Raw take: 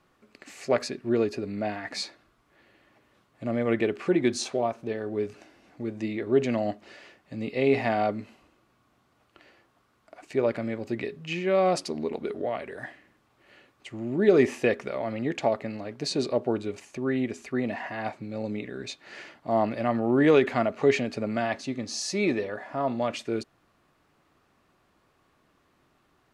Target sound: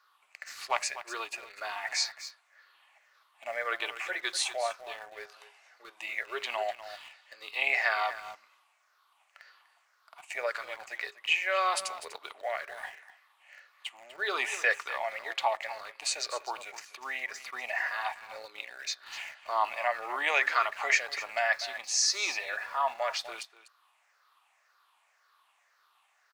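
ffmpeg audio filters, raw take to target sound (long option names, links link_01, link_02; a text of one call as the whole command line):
ffmpeg -i in.wav -filter_complex "[0:a]afftfilt=real='re*pow(10,11/40*sin(2*PI*(0.58*log(max(b,1)*sr/1024/100)/log(2)-(-1.9)*(pts-256)/sr)))':imag='im*pow(10,11/40*sin(2*PI*(0.58*log(max(b,1)*sr/1024/100)/log(2)-(-1.9)*(pts-256)/sr)))':win_size=1024:overlap=0.75,highpass=frequency=860:width=0.5412,highpass=frequency=860:width=1.3066,aecho=1:1:247:0.224,asplit=2[link_01][link_02];[link_02]aeval=exprs='val(0)*gte(abs(val(0)),0.00562)':channel_layout=same,volume=-7.5dB[link_03];[link_01][link_03]amix=inputs=2:normalize=0" out.wav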